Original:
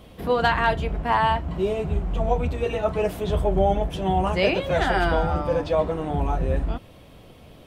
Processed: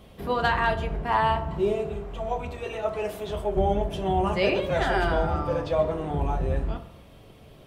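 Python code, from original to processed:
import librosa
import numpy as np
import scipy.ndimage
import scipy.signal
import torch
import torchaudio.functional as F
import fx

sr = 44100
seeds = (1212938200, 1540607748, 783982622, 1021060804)

y = fx.low_shelf(x, sr, hz=360.0, db=-9.5, at=(1.75, 3.57))
y = fx.rev_fdn(y, sr, rt60_s=0.8, lf_ratio=1.05, hf_ratio=0.55, size_ms=15.0, drr_db=6.5)
y = y * librosa.db_to_amplitude(-3.5)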